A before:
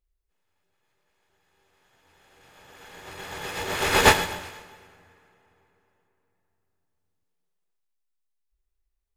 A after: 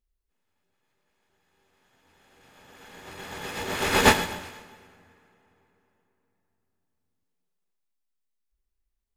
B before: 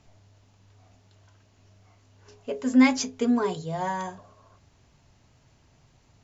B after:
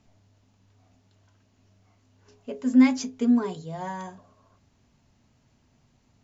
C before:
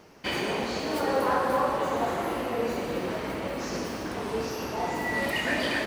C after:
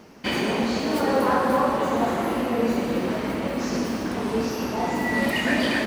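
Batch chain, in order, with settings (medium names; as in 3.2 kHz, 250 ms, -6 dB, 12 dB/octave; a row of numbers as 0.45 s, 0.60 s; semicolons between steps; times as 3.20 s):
peaking EQ 230 Hz +9 dB 0.53 oct; normalise loudness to -24 LUFS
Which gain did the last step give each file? -2.0 dB, -5.5 dB, +3.5 dB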